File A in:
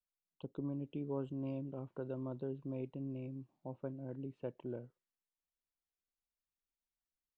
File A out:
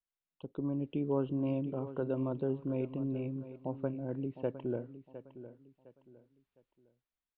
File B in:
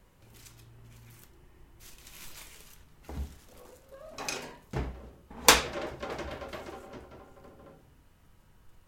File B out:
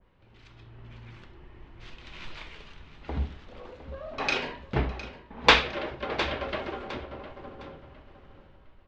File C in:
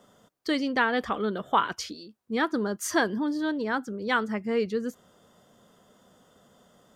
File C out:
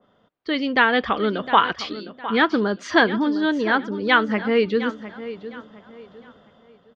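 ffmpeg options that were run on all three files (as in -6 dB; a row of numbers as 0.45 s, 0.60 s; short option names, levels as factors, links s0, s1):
-af "lowpass=f=3700:w=0.5412,lowpass=f=3700:w=1.3066,equalizer=f=140:w=1.5:g=-2,dynaudnorm=f=130:g=9:m=2.99,aecho=1:1:709|1418|2127:0.211|0.0655|0.0203,adynamicequalizer=threshold=0.02:dfrequency=1900:dqfactor=0.7:tfrequency=1900:tqfactor=0.7:attack=5:release=100:ratio=0.375:range=3:mode=boostabove:tftype=highshelf,volume=0.841"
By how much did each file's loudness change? +7.5 LU, +1.5 LU, +7.5 LU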